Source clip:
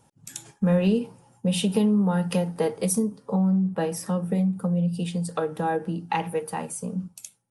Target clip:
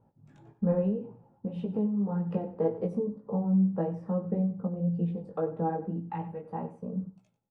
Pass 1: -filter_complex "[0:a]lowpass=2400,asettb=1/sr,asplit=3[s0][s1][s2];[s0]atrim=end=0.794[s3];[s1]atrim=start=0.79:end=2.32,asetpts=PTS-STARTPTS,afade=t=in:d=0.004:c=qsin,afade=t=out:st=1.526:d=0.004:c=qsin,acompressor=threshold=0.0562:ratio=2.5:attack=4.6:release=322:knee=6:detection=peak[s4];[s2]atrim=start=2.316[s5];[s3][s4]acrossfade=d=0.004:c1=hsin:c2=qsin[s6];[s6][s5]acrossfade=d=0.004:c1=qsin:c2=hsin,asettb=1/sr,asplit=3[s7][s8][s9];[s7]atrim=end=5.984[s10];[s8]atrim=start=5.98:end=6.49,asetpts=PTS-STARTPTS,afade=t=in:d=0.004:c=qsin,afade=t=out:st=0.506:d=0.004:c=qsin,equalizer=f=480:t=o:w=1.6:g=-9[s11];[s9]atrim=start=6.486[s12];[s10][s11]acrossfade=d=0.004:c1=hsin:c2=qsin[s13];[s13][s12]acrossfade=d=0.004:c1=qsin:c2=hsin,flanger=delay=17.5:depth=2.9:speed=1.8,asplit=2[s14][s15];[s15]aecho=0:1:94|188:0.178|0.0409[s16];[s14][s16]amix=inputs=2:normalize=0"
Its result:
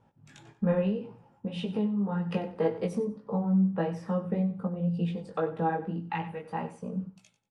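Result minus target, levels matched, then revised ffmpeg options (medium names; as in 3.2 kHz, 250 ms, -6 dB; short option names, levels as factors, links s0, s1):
2 kHz band +12.5 dB
-filter_complex "[0:a]lowpass=800,asettb=1/sr,asplit=3[s0][s1][s2];[s0]atrim=end=0.794[s3];[s1]atrim=start=0.79:end=2.32,asetpts=PTS-STARTPTS,afade=t=in:d=0.004:c=qsin,afade=t=out:st=1.526:d=0.004:c=qsin,acompressor=threshold=0.0562:ratio=2.5:attack=4.6:release=322:knee=6:detection=peak[s4];[s2]atrim=start=2.316[s5];[s3][s4]acrossfade=d=0.004:c1=hsin:c2=qsin[s6];[s6][s5]acrossfade=d=0.004:c1=qsin:c2=hsin,asettb=1/sr,asplit=3[s7][s8][s9];[s7]atrim=end=5.984[s10];[s8]atrim=start=5.98:end=6.49,asetpts=PTS-STARTPTS,afade=t=in:d=0.004:c=qsin,afade=t=out:st=0.506:d=0.004:c=qsin,equalizer=f=480:t=o:w=1.6:g=-9[s11];[s9]atrim=start=6.486[s12];[s10][s11]acrossfade=d=0.004:c1=hsin:c2=qsin[s13];[s13][s12]acrossfade=d=0.004:c1=qsin:c2=hsin,flanger=delay=17.5:depth=2.9:speed=1.8,asplit=2[s14][s15];[s15]aecho=0:1:94|188:0.178|0.0409[s16];[s14][s16]amix=inputs=2:normalize=0"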